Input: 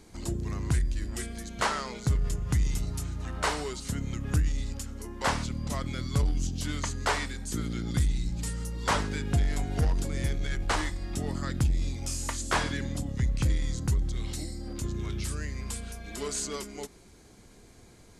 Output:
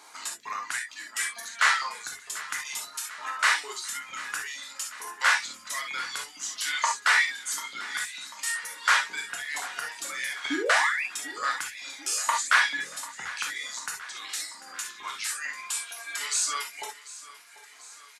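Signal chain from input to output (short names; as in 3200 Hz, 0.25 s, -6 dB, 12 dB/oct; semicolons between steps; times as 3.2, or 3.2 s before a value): reverb removal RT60 1.9 s; in parallel at -1 dB: limiter -26 dBFS, peak gain reduction 11 dB; on the sum: LFO high-pass saw up 2.2 Hz 920–2300 Hz; painted sound rise, 10.5–11.04, 260–2800 Hz -32 dBFS; on a send: feedback echo 0.742 s, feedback 58%, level -17 dB; on the sum: non-linear reverb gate 90 ms flat, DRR 0 dB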